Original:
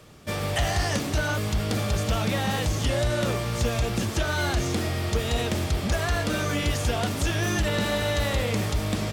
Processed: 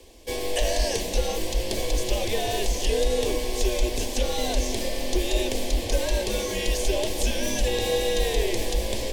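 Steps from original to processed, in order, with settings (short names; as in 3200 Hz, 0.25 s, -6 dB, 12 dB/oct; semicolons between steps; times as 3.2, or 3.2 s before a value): fixed phaser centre 590 Hz, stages 4; echo with dull and thin repeats by turns 0.211 s, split 1500 Hz, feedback 88%, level -13.5 dB; frequency shift -98 Hz; gain +3.5 dB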